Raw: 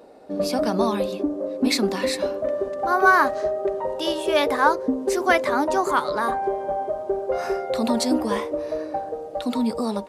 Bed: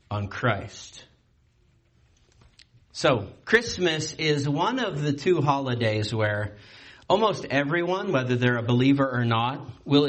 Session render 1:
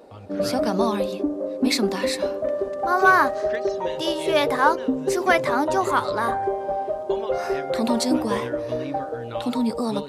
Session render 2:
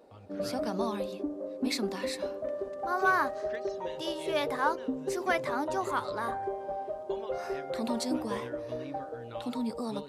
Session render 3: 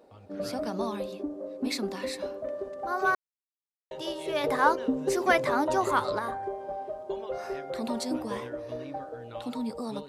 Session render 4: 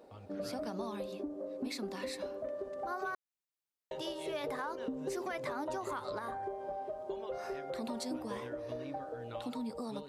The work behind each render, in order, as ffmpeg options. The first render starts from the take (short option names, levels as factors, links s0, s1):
-filter_complex "[1:a]volume=0.2[s0];[0:a][s0]amix=inputs=2:normalize=0"
-af "volume=0.316"
-filter_complex "[0:a]asplit=5[s0][s1][s2][s3][s4];[s0]atrim=end=3.15,asetpts=PTS-STARTPTS,afade=t=out:st=3.146:d=0.004:c=hsin[s5];[s1]atrim=start=3.15:end=3.91,asetpts=PTS-STARTPTS,volume=0[s6];[s2]atrim=start=3.91:end=4.442,asetpts=PTS-STARTPTS,afade=t=in:d=0.004:c=hsin[s7];[s3]atrim=start=4.438:end=6.192,asetpts=PTS-STARTPTS,volume=1.88[s8];[s4]atrim=start=6.188[s9];[s5][s6][s7]concat=n=3:v=0:a=1[s10];[s10][s8]acrossfade=d=0.004:c1=hsin:c2=hsin[s11];[s11][s9]acrossfade=d=0.004:c1=hsin:c2=hsin"
-af "alimiter=limit=0.1:level=0:latency=1:release=169,acompressor=threshold=0.0112:ratio=2.5"